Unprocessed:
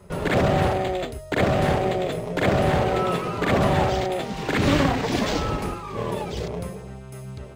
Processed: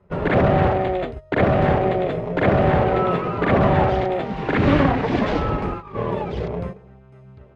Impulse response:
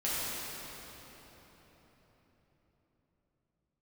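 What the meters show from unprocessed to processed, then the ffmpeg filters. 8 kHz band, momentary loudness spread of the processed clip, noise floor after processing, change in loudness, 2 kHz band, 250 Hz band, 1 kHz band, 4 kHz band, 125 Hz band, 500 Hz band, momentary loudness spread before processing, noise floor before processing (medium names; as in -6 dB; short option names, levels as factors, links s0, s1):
under -15 dB, 10 LU, -47 dBFS, +3.0 dB, +1.5 dB, +3.5 dB, +3.5 dB, -5.0 dB, +3.5 dB, +3.5 dB, 11 LU, -39 dBFS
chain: -af "agate=range=0.251:threshold=0.0251:ratio=16:detection=peak,lowpass=2200,volume=1.5"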